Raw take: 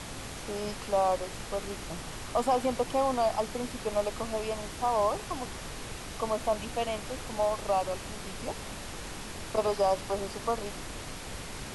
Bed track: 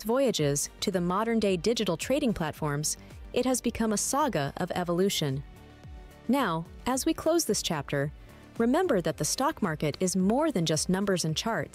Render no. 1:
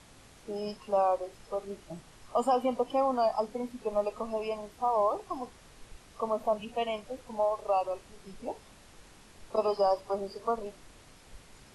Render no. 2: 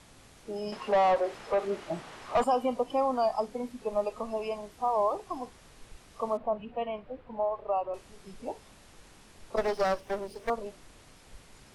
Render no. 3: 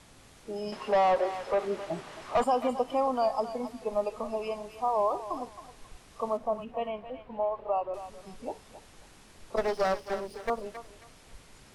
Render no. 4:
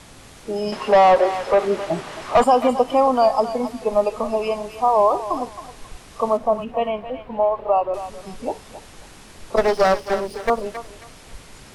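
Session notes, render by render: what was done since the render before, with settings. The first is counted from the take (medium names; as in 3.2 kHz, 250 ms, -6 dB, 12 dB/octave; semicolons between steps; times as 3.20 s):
noise print and reduce 15 dB
0.72–2.44 s: overdrive pedal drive 22 dB, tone 1.5 kHz, clips at -16.5 dBFS; 6.37–7.94 s: distance through air 470 m; 9.57–10.50 s: comb filter that takes the minimum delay 0.33 ms
thinning echo 269 ms, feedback 33%, high-pass 920 Hz, level -9 dB
trim +11 dB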